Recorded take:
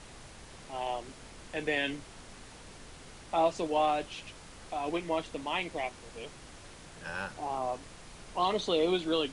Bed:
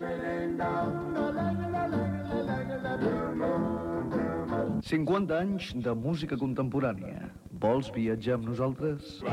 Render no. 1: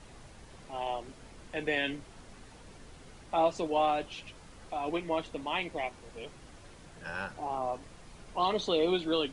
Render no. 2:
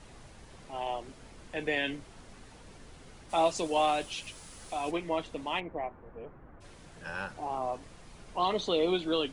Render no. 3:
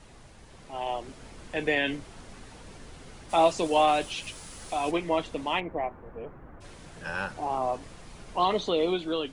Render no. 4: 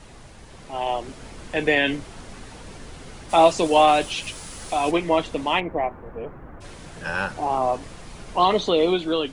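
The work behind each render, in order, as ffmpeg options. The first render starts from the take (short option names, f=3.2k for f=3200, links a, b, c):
-af "afftdn=nr=6:nf=-51"
-filter_complex "[0:a]asplit=3[a][b][c];[a]afade=t=out:st=3.29:d=0.02[d];[b]aemphasis=mode=production:type=75kf,afade=t=in:st=3.29:d=0.02,afade=t=out:st=4.9:d=0.02[e];[c]afade=t=in:st=4.9:d=0.02[f];[d][e][f]amix=inputs=3:normalize=0,asplit=3[g][h][i];[g]afade=t=out:st=5.59:d=0.02[j];[h]lowpass=f=1.6k:w=0.5412,lowpass=f=1.6k:w=1.3066,afade=t=in:st=5.59:d=0.02,afade=t=out:st=6.6:d=0.02[k];[i]afade=t=in:st=6.6:d=0.02[l];[j][k][l]amix=inputs=3:normalize=0"
-filter_complex "[0:a]acrossover=split=3100[a][b];[b]alimiter=level_in=11.5dB:limit=-24dB:level=0:latency=1:release=55,volume=-11.5dB[c];[a][c]amix=inputs=2:normalize=0,dynaudnorm=f=160:g=11:m=5dB"
-af "volume=6.5dB"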